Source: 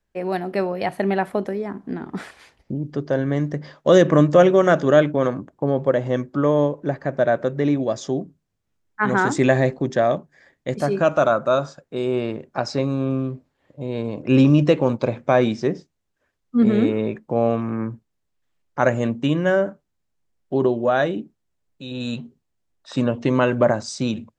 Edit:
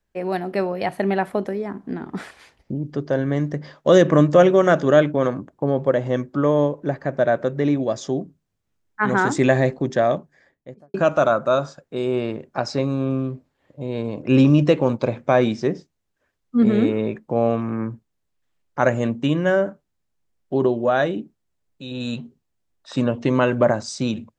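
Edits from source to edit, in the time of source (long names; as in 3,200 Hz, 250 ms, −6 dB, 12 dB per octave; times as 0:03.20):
0:10.17–0:10.94: fade out and dull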